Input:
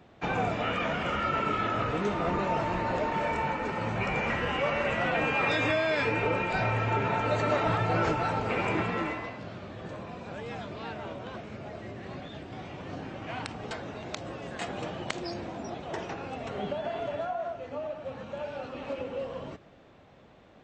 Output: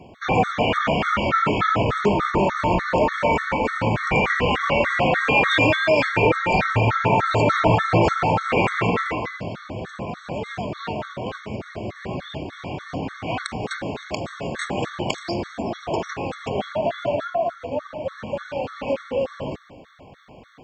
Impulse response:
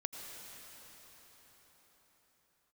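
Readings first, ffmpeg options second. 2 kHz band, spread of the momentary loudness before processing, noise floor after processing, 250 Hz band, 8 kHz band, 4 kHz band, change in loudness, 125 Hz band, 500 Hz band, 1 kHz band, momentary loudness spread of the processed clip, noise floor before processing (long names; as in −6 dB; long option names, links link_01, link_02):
+8.5 dB, 14 LU, −45 dBFS, +8.5 dB, +8.5 dB, +9.0 dB, +8.5 dB, +8.5 dB, +8.5 dB, +8.5 dB, 14 LU, −55 dBFS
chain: -filter_complex "[0:a]acontrast=80,asplit=2[link_01][link_02];[1:a]atrim=start_sample=2205,afade=type=out:start_time=0.3:duration=0.01,atrim=end_sample=13671[link_03];[link_02][link_03]afir=irnorm=-1:irlink=0,volume=-5.5dB[link_04];[link_01][link_04]amix=inputs=2:normalize=0,afftfilt=real='re*gt(sin(2*PI*3.4*pts/sr)*(1-2*mod(floor(b*sr/1024/1100),2)),0)':imag='im*gt(sin(2*PI*3.4*pts/sr)*(1-2*mod(floor(b*sr/1024/1100),2)),0)':win_size=1024:overlap=0.75,volume=2dB"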